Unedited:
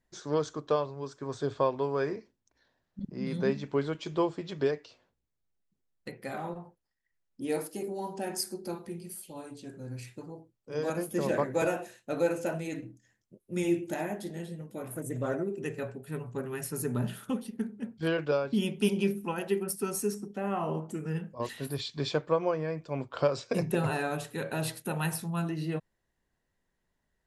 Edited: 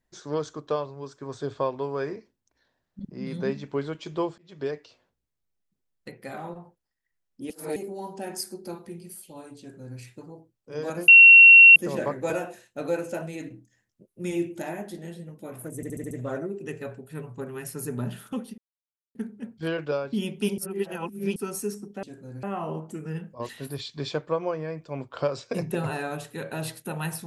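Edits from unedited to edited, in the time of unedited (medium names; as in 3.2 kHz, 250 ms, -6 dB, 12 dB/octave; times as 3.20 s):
4.38–4.76 s: fade in
7.50–7.76 s: reverse
9.59–9.99 s: copy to 20.43 s
11.08 s: add tone 2.73 kHz -7 dBFS 0.68 s
15.08 s: stutter 0.07 s, 6 plays
17.55 s: insert silence 0.57 s
18.98–19.76 s: reverse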